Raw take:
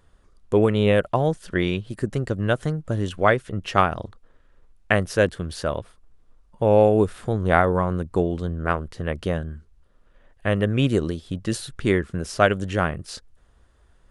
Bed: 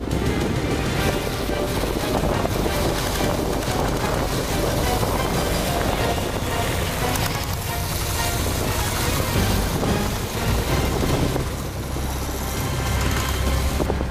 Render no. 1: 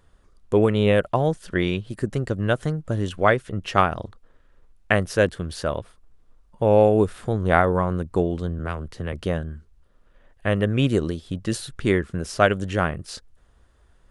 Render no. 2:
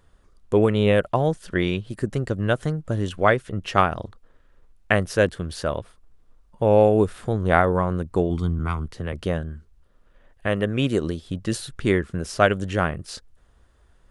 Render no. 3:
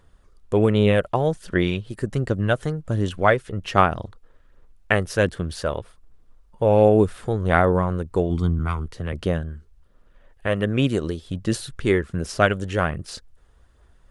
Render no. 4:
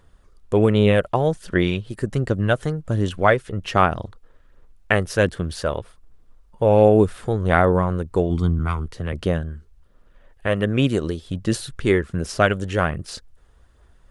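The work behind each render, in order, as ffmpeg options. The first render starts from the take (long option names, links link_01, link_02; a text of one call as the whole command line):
ffmpeg -i in.wav -filter_complex "[0:a]asettb=1/sr,asplit=3[link_01][link_02][link_03];[link_01]atrim=end=8.594[link_04];[link_02]atrim=start=8.59:end=9.13,asetpts=PTS-STARTPTS,afade=type=in:duration=0.004:curve=qsin,afade=type=out:start_time=0.536:duration=0.004:curve=qsin,acrossover=split=130|3000[link_05][link_06][link_07];[link_06]acompressor=threshold=-27dB:ratio=3:attack=3.2:release=140:knee=2.83:detection=peak[link_08];[link_05][link_08][link_07]amix=inputs=3:normalize=0[link_09];[link_03]atrim=start=9.126[link_10];[link_04][link_09]acrossfade=duration=0.004:curve1=hsin:curve2=qsin[link_11];[link_11][link_10]acrossfade=duration=0.004:curve1=qsin:curve2=hsin" out.wav
ffmpeg -i in.wav -filter_complex "[0:a]asettb=1/sr,asplit=3[link_01][link_02][link_03];[link_01]atrim=end=8.304[link_04];[link_02]atrim=start=8.3:end=8.86,asetpts=PTS-STARTPTS,afade=type=in:duration=0.004:curve=qsin,afade=type=out:start_time=0.556:duration=0.004:curve=qsin,aecho=1:1:0.9:0.75,atrim=end_sample=24696[link_05];[link_03]atrim=start=8.856[link_06];[link_04][link_05]acrossfade=duration=0.004:curve1=hsin:curve2=qsin[link_07];[link_07][link_06]acrossfade=duration=0.004:curve1=qsin:curve2=hsin,asettb=1/sr,asplit=3[link_08][link_09][link_10];[link_08]atrim=end=10.474[link_11];[link_09]atrim=start=10.47:end=11.04,asetpts=PTS-STARTPTS,afade=type=in:duration=0.004:curve=qsin,afade=type=out:start_time=0.566:duration=0.004:curve=qsin,lowshelf=frequency=110:gain=-9[link_12];[link_10]atrim=start=11.036[link_13];[link_11][link_12]acrossfade=duration=0.004:curve1=hsin:curve2=qsin[link_14];[link_14][link_13]acrossfade=duration=0.004:curve1=qsin:curve2=hsin" out.wav
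ffmpeg -i in.wav -af "aphaser=in_gain=1:out_gain=1:delay=2.4:decay=0.26:speed=1.3:type=sinusoidal" out.wav
ffmpeg -i in.wav -af "volume=1.5dB,alimiter=limit=-3dB:level=0:latency=1" out.wav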